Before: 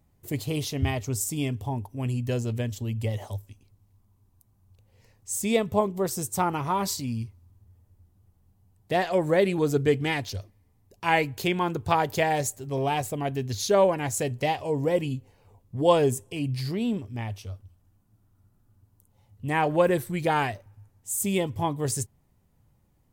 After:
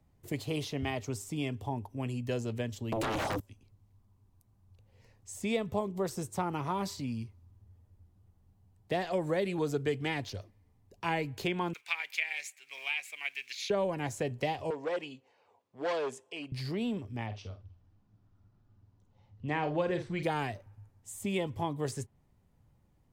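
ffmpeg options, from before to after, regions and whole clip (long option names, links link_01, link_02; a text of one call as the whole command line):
ffmpeg -i in.wav -filter_complex "[0:a]asettb=1/sr,asplit=3[link_01][link_02][link_03];[link_01]atrim=end=2.924[link_04];[link_02]atrim=start=2.92:end=3.4,asetpts=PTS-STARTPTS,afade=type=in:duration=0.004:curve=qsin,afade=type=out:start_time=0.476:duration=0.004:curve=qsin,acompressor=threshold=-31dB:ratio=5:attack=3.2:release=140:knee=1:detection=peak,aeval=exprs='0.0708*sin(PI/2*7.94*val(0)/0.0708)':channel_layout=same[link_05];[link_03]atrim=start=3.396[link_06];[link_04][link_05]acrossfade=duration=0.004:curve1=hsin:curve2=qsin[link_07];[link_07][link_06]acrossfade=duration=0.004:curve1=qsin:curve2=hsin,asettb=1/sr,asplit=3[link_08][link_09][link_10];[link_08]atrim=end=11.734[link_11];[link_09]atrim=start=11.73:end=13.7,asetpts=PTS-STARTPTS,afade=type=in:duration=0.004:curve=qsin,afade=type=out:start_time=1.966:duration=0.004:curve=qsin,acrusher=bits=8:mode=log:mix=0:aa=0.000001,highpass=frequency=2300:width_type=q:width=7.3[link_12];[link_10]atrim=start=13.696[link_13];[link_11][link_12]acrossfade=duration=0.004:curve1=hsin:curve2=qsin[link_14];[link_14][link_13]acrossfade=duration=0.004:curve1=qsin:curve2=hsin,asettb=1/sr,asplit=3[link_15][link_16][link_17];[link_15]atrim=end=14.704[link_18];[link_16]atrim=start=14.7:end=16.52,asetpts=PTS-STARTPTS,afade=type=in:duration=0.004:curve=qsin,afade=type=out:start_time=1.816:duration=0.004:curve=qsin,volume=21dB,asoftclip=hard,volume=-21dB,highpass=540,lowpass=5900[link_19];[link_17]atrim=start=16.516[link_20];[link_18][link_19]acrossfade=duration=0.004:curve1=hsin:curve2=qsin[link_21];[link_21][link_20]acrossfade=duration=0.004:curve1=qsin:curve2=hsin,asettb=1/sr,asplit=3[link_22][link_23][link_24];[link_22]atrim=end=17.264[link_25];[link_23]atrim=start=17.26:end=20.23,asetpts=PTS-STARTPTS,afade=type=in:duration=0.004:curve=qsin,afade=type=out:start_time=2.966:duration=0.004:curve=qsin,lowpass=frequency=5900:width=0.5412,lowpass=frequency=5900:width=1.3066,asplit=2[link_26][link_27];[link_27]adelay=48,volume=-9.5dB[link_28];[link_26][link_28]amix=inputs=2:normalize=0,atrim=end_sample=130977[link_29];[link_24]atrim=start=20.226[link_30];[link_25][link_29]acrossfade=duration=0.004:curve1=hsin:curve2=qsin[link_31];[link_31][link_30]acrossfade=duration=0.004:curve1=qsin:curve2=hsin,highshelf=frequency=8300:gain=-11,acrossover=split=180|450|3400[link_32][link_33][link_34][link_35];[link_32]acompressor=threshold=-40dB:ratio=4[link_36];[link_33]acompressor=threshold=-34dB:ratio=4[link_37];[link_34]acompressor=threshold=-31dB:ratio=4[link_38];[link_35]acompressor=threshold=-43dB:ratio=4[link_39];[link_36][link_37][link_38][link_39]amix=inputs=4:normalize=0,volume=-2dB" out.wav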